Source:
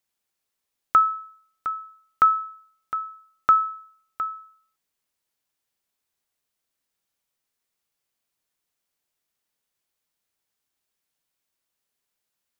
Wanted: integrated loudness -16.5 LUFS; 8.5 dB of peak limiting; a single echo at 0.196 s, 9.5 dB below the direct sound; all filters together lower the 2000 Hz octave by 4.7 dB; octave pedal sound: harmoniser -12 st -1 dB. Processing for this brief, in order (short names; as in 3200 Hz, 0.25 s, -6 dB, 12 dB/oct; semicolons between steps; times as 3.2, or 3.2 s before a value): bell 2000 Hz -7.5 dB; limiter -19.5 dBFS; echo 0.196 s -9.5 dB; harmoniser -12 st -1 dB; gain +12.5 dB